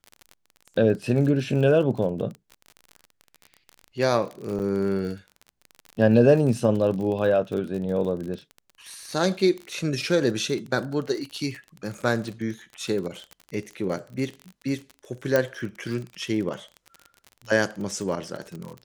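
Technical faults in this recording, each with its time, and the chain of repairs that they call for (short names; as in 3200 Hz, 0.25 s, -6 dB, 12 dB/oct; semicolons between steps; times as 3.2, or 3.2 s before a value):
crackle 35/s -31 dBFS
4.59–4.6 gap 8.8 ms
15.36 pop -8 dBFS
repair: de-click; interpolate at 4.59, 8.8 ms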